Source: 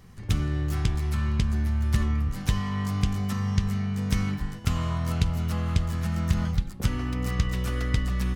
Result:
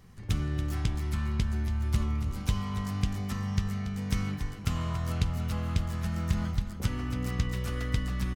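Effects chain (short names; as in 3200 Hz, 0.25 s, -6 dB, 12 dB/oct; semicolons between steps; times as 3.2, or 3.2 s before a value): 1.88–2.86 notch 1800 Hz, Q 7.4; on a send: feedback echo 0.282 s, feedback 36%, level -11 dB; on the sum: gain -4 dB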